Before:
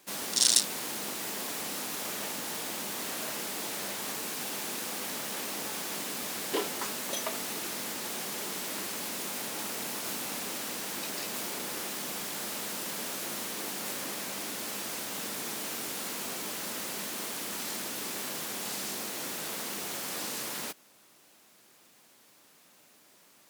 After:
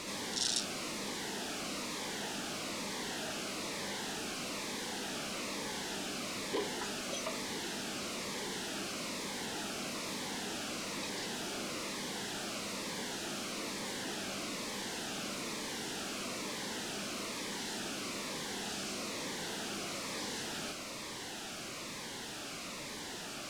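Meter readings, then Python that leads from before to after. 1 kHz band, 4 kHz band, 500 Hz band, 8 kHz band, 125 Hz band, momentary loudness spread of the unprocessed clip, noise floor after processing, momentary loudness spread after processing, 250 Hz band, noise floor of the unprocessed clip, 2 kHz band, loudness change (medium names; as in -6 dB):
-2.5 dB, -3.0 dB, -1.0 dB, -7.0 dB, +1.5 dB, 2 LU, -44 dBFS, 4 LU, +0.5 dB, -60 dBFS, -2.0 dB, -5.5 dB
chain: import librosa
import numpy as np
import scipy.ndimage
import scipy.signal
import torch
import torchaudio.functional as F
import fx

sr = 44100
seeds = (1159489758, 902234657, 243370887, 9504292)

y = x + 0.5 * 10.0 ** (-25.0 / 20.0) * np.sign(x)
y = fx.air_absorb(y, sr, metres=76.0)
y = fx.notch_cascade(y, sr, direction='falling', hz=1.1)
y = F.gain(torch.from_numpy(y), -7.0).numpy()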